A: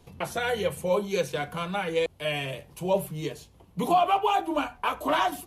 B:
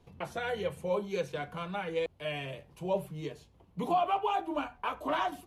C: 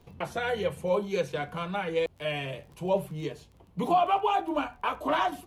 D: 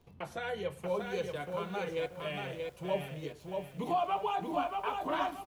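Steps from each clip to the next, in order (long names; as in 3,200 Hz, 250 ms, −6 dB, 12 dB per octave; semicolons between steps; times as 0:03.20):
low-pass filter 3,300 Hz 6 dB per octave; level −6 dB
surface crackle 19 per second −48 dBFS; level +4.5 dB
far-end echo of a speakerphone 110 ms, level −21 dB; feedback echo at a low word length 632 ms, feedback 35%, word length 9 bits, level −4 dB; level −7.5 dB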